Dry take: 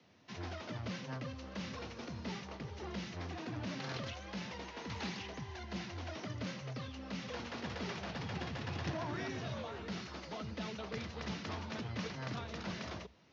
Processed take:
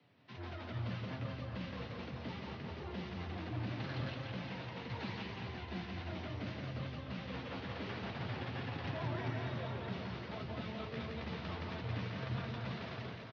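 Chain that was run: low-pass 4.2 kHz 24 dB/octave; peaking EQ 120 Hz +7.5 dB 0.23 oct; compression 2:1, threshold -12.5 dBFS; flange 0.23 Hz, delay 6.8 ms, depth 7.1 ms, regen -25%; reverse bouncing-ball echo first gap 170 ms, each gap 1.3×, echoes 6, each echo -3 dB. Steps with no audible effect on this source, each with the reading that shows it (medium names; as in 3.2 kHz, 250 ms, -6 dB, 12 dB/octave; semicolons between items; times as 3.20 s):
compression, threshold -12.5 dBFS: peak at its input -26.0 dBFS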